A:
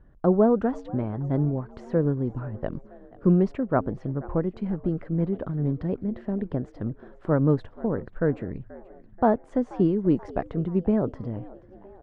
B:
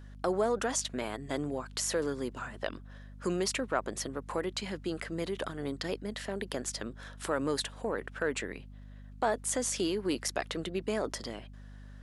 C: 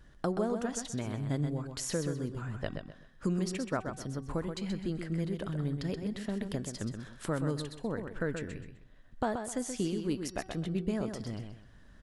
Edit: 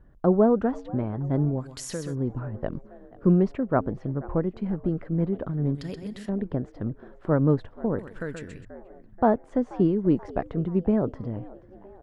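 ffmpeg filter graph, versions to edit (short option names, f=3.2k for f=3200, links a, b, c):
-filter_complex "[2:a]asplit=3[a][b][c];[0:a]asplit=4[d][e][f][g];[d]atrim=end=1.65[h];[a]atrim=start=1.59:end=2.16[i];[e]atrim=start=2.1:end=5.752[j];[b]atrim=start=5.748:end=6.292[k];[f]atrim=start=6.288:end=7.992[l];[c]atrim=start=7.988:end=8.652[m];[g]atrim=start=8.648[n];[h][i]acrossfade=d=0.06:c1=tri:c2=tri[o];[o][j]acrossfade=d=0.06:c1=tri:c2=tri[p];[p][k]acrossfade=d=0.004:c1=hsin:c2=hsin[q];[q][l]acrossfade=d=0.004:c1=hsin:c2=hsin[r];[r][m]acrossfade=d=0.004:c1=hsin:c2=hsin[s];[s][n]acrossfade=d=0.004:c1=hsin:c2=hsin"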